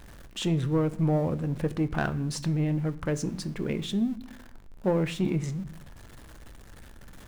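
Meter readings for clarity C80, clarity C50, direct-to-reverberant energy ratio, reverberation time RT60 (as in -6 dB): 20.5 dB, 18.0 dB, 11.5 dB, 0.60 s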